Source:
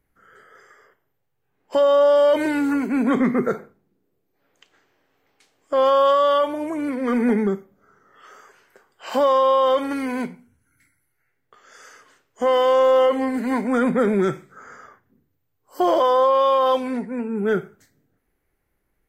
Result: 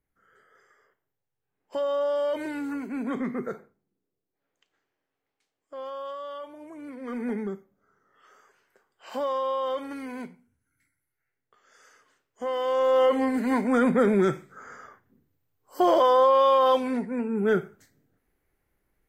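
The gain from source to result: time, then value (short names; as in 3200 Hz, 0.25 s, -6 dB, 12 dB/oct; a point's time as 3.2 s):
3.49 s -11 dB
5.86 s -20 dB
6.37 s -20 dB
7.32 s -11 dB
12.56 s -11 dB
13.15 s -2 dB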